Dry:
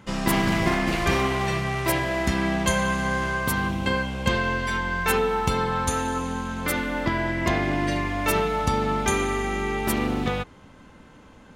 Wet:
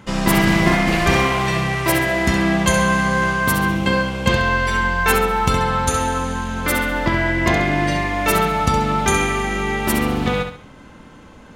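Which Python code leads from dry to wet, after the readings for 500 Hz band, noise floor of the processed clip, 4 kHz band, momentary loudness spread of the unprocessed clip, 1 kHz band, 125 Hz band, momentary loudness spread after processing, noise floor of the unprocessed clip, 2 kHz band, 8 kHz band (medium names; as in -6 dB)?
+5.0 dB, -43 dBFS, +6.5 dB, 4 LU, +6.5 dB, +6.5 dB, 5 LU, -49 dBFS, +7.5 dB, +6.5 dB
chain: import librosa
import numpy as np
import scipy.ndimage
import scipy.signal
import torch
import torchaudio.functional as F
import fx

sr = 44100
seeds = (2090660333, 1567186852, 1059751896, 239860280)

y = fx.echo_feedback(x, sr, ms=67, feedback_pct=36, wet_db=-7.0)
y = y * librosa.db_to_amplitude(5.5)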